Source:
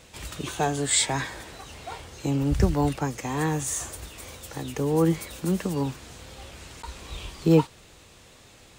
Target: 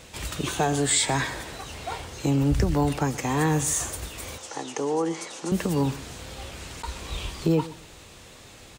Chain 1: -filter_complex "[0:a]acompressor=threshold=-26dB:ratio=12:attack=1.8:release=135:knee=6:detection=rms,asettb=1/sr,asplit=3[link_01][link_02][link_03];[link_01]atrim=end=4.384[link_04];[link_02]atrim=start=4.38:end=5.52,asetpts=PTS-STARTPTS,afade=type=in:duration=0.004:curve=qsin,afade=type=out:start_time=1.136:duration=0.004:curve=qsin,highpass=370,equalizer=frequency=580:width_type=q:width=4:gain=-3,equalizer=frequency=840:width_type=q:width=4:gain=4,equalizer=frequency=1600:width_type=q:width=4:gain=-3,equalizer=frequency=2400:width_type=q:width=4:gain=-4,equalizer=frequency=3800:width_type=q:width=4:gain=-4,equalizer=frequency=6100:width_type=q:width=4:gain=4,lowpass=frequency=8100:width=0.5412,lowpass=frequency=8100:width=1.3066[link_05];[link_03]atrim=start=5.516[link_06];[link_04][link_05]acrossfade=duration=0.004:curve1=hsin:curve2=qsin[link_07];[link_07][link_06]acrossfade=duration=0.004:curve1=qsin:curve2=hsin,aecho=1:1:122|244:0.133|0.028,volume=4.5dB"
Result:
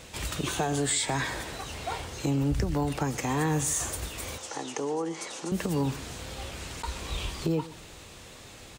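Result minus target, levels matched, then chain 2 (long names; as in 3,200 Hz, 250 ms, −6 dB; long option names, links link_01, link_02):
downward compressor: peak gain reduction +6 dB
-filter_complex "[0:a]acompressor=threshold=-19.5dB:ratio=12:attack=1.8:release=135:knee=6:detection=rms,asettb=1/sr,asplit=3[link_01][link_02][link_03];[link_01]atrim=end=4.384[link_04];[link_02]atrim=start=4.38:end=5.52,asetpts=PTS-STARTPTS,afade=type=in:duration=0.004:curve=qsin,afade=type=out:start_time=1.136:duration=0.004:curve=qsin,highpass=370,equalizer=frequency=580:width_type=q:width=4:gain=-3,equalizer=frequency=840:width_type=q:width=4:gain=4,equalizer=frequency=1600:width_type=q:width=4:gain=-3,equalizer=frequency=2400:width_type=q:width=4:gain=-4,equalizer=frequency=3800:width_type=q:width=4:gain=-4,equalizer=frequency=6100:width_type=q:width=4:gain=4,lowpass=frequency=8100:width=0.5412,lowpass=frequency=8100:width=1.3066[link_05];[link_03]atrim=start=5.516[link_06];[link_04][link_05]acrossfade=duration=0.004:curve1=hsin:curve2=qsin[link_07];[link_07][link_06]acrossfade=duration=0.004:curve1=qsin:curve2=hsin,aecho=1:1:122|244:0.133|0.028,volume=4.5dB"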